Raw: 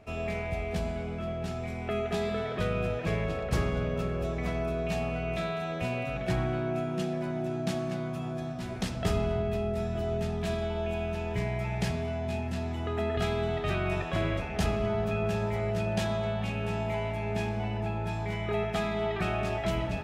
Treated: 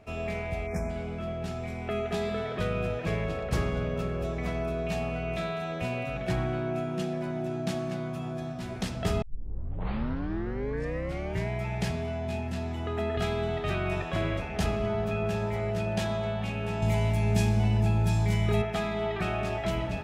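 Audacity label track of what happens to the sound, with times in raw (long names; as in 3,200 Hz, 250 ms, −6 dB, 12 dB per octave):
0.670000	0.900000	time-frequency box erased 2,500–5,100 Hz
9.220000	9.220000	tape start 2.28 s
16.820000	18.620000	bass and treble bass +10 dB, treble +14 dB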